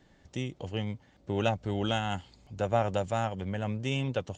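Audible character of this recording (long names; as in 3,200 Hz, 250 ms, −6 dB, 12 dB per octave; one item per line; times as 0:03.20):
background noise floor −62 dBFS
spectral slope −5.0 dB per octave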